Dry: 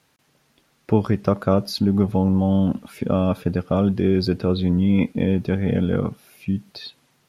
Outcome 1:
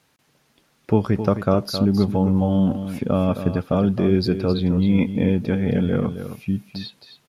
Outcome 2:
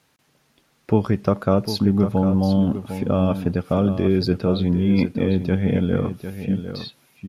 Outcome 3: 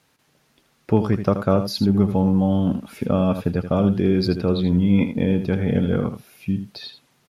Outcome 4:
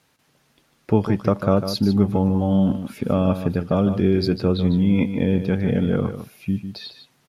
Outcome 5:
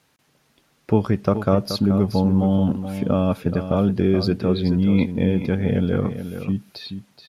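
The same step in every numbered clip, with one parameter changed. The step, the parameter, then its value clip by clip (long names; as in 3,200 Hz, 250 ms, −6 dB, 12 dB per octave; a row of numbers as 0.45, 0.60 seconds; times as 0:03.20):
single-tap delay, delay time: 265, 752, 80, 150, 427 milliseconds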